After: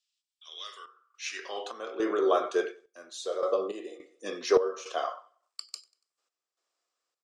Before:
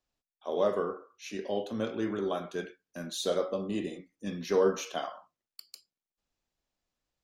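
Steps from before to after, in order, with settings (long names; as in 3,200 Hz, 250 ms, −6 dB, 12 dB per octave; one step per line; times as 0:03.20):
in parallel at −1.5 dB: brickwall limiter −26.5 dBFS, peak gain reduction 11 dB
on the sum: dynamic equaliser 470 Hz, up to +6 dB, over −38 dBFS, Q 0.96
high-pass filter sweep 3,200 Hz → 570 Hz, 0:00.77–0:01.99
loudspeaker in its box 230–9,300 Hz, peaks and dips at 350 Hz +5 dB, 590 Hz −9 dB, 860 Hz −7 dB, 1,200 Hz +8 dB, 5,100 Hz +5 dB, 7,900 Hz +8 dB
on a send: repeating echo 95 ms, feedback 41%, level −23.5 dB
on the sum: sample-and-hold tremolo, depth 80%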